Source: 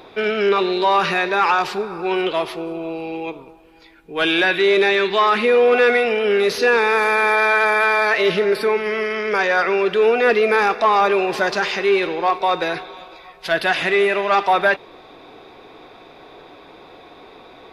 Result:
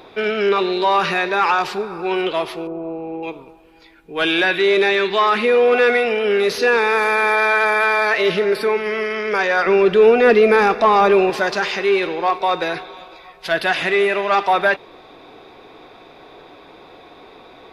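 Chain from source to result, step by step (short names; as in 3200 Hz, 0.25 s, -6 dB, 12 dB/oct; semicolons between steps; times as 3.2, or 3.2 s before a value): 2.67–3.23 LPF 1100 Hz 12 dB/oct; 9.66–11.3 low shelf 370 Hz +10.5 dB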